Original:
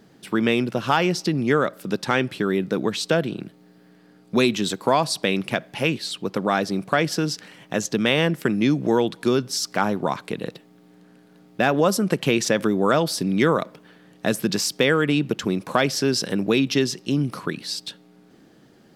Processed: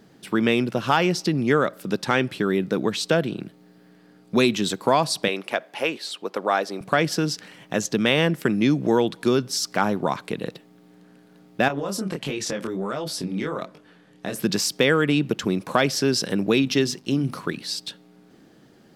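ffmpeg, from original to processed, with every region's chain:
ffmpeg -i in.wav -filter_complex "[0:a]asettb=1/sr,asplit=3[link_01][link_02][link_03];[link_01]atrim=end=5.284[link_04];[link_02]atrim=start=5.28:end=6.81,asetpts=PTS-STARTPTS,afade=type=in:duration=0.004:curve=qsin,afade=type=out:start_time=1.526:duration=0.004:curve=qsin,deesser=0.3,highpass=500,tiltshelf=frequency=1400:gain=3.5[link_05];[link_03]atrim=start=6.806[link_06];[link_04][link_05]acrossfade=duration=0.004:curve1=hsin:curve2=qsin[link_07];[link_07][link_06]acrossfade=duration=0.004:curve1=qsin:curve2=hsin,asettb=1/sr,asplit=3[link_08][link_09][link_10];[link_08]atrim=end=11.684[link_11];[link_09]atrim=start=11.68:end=14.36,asetpts=PTS-STARTPTS,afade=type=in:duration=0.004:curve=qsin,afade=type=out:start_time=2.676:duration=0.004:curve=qsin,lowpass=12000,acompressor=threshold=-20dB:ratio=6:attack=3.2:release=140:knee=1:detection=peak,flanger=delay=19.5:depth=7.2:speed=1.4[link_12];[link_10]atrim=start=14.356[link_13];[link_11][link_12]acrossfade=duration=0.004:curve1=hsin:curve2=qsin[link_14];[link_14][link_13]acrossfade=duration=0.004:curve1=qsin:curve2=hsin,asettb=1/sr,asplit=3[link_15][link_16][link_17];[link_15]atrim=end=16.624[link_18];[link_16]atrim=start=16.62:end=17.56,asetpts=PTS-STARTPTS,afade=type=in:duration=0.004:curve=qsin,afade=type=out:start_time=0.936:duration=0.004:curve=qsin,aeval=exprs='sgn(val(0))*max(abs(val(0))-0.00188,0)':channel_layout=same,bandreject=frequency=50:width_type=h:width=6,bandreject=frequency=100:width_type=h:width=6,bandreject=frequency=150:width_type=h:width=6,bandreject=frequency=200:width_type=h:width=6,bandreject=frequency=250:width_type=h:width=6[link_19];[link_17]atrim=start=17.556[link_20];[link_18][link_19]acrossfade=duration=0.004:curve1=hsin:curve2=qsin[link_21];[link_21][link_20]acrossfade=duration=0.004:curve1=qsin:curve2=hsin" out.wav

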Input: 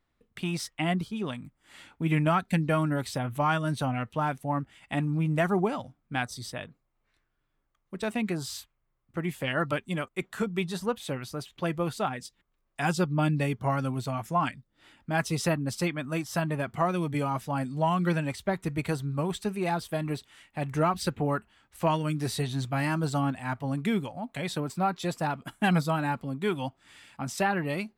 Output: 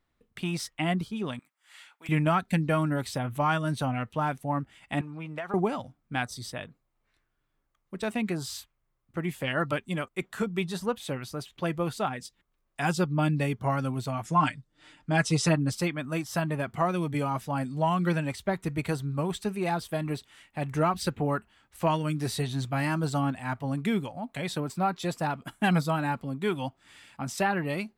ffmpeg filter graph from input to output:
ffmpeg -i in.wav -filter_complex "[0:a]asettb=1/sr,asplit=3[link_01][link_02][link_03];[link_01]atrim=end=1.394[link_04];[link_02]atrim=start=1.39:end=2.09,asetpts=PTS-STARTPTS,afade=type=in:duration=0.004:curve=qsin,afade=type=out:start_time=0.696:duration=0.004:curve=qsin,highpass=1100,aeval=exprs='0.02*(abs(mod(val(0)/0.02+3,4)-2)-1)':channel_layout=same[link_05];[link_03]atrim=start=2.086[link_06];[link_04][link_05]acrossfade=duration=0.004:curve1=hsin:curve2=qsin[link_07];[link_07][link_06]acrossfade=duration=0.004:curve1=qsin:curve2=hsin,asettb=1/sr,asplit=3[link_08][link_09][link_10];[link_08]atrim=end=5.014[link_11];[link_09]atrim=start=5.01:end=5.54,asetpts=PTS-STARTPTS,afade=type=in:duration=0.004:curve=qsin,afade=type=out:start_time=0.526:duration=0.004:curve=qsin,acrossover=split=450 4400:gain=0.2 1 0.2[link_12][link_13][link_14];[link_12][link_13][link_14]amix=inputs=3:normalize=0,acompressor=threshold=-30dB:ratio=12:attack=3.2:release=140:knee=1:detection=peak[link_15];[link_10]atrim=start=5.536[link_16];[link_11][link_15]acrossfade=duration=0.004:curve1=hsin:curve2=qsin[link_17];[link_17][link_16]acrossfade=duration=0.004:curve1=qsin:curve2=hsin,asettb=1/sr,asplit=3[link_18][link_19][link_20];[link_18]atrim=end=14.244[link_21];[link_19]atrim=start=14.24:end=15.72,asetpts=PTS-STARTPTS,afade=type=in:duration=0.004:curve=qsin,afade=type=out:start_time=1.476:duration=0.004:curve=qsin,lowpass=frequency=8900:width=0.5412,lowpass=frequency=8900:width=1.3066,highshelf=frequency=6000:gain=5.5,aecho=1:1:6.6:0.73,atrim=end_sample=65268[link_22];[link_20]atrim=start=15.716[link_23];[link_21][link_22]acrossfade=duration=0.004:curve1=hsin:curve2=qsin[link_24];[link_24][link_23]acrossfade=duration=0.004:curve1=qsin:curve2=hsin" out.wav

